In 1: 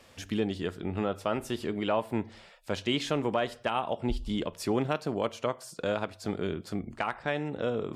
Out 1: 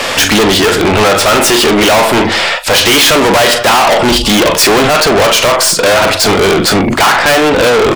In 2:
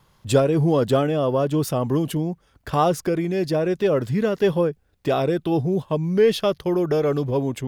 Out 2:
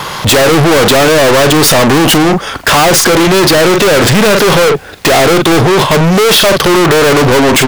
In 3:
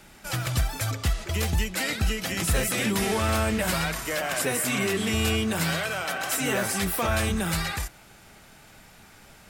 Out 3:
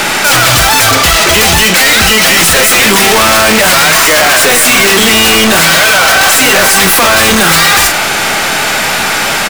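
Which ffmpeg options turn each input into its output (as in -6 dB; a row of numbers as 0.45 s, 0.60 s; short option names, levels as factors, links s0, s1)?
-filter_complex "[0:a]asplit=2[s0][s1];[s1]highpass=f=720:p=1,volume=22.4,asoftclip=type=tanh:threshold=0.562[s2];[s0][s2]amix=inputs=2:normalize=0,lowpass=f=5100:p=1,volume=0.501,asplit=2[s3][s4];[s4]adelay=42,volume=0.237[s5];[s3][s5]amix=inputs=2:normalize=0,aeval=exprs='(tanh(17.8*val(0)+0.5)-tanh(0.5))/17.8':c=same,apsyclip=37.6,volume=0.531"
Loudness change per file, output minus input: +24.5 LU, +15.0 LU, +21.0 LU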